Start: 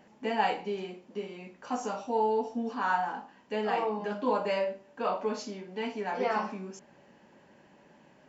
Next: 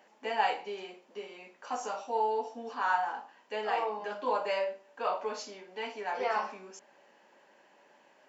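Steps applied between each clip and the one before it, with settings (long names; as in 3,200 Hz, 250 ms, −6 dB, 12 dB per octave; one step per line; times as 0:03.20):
high-pass filter 500 Hz 12 dB per octave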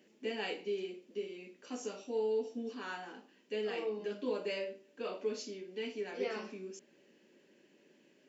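drawn EQ curve 380 Hz 0 dB, 840 Hz −26 dB, 2,600 Hz −8 dB
level +5.5 dB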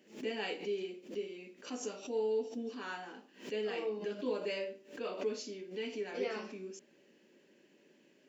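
background raised ahead of every attack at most 150 dB per second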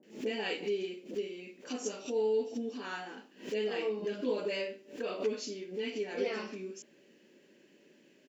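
multiband delay without the direct sound lows, highs 30 ms, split 930 Hz
level +3.5 dB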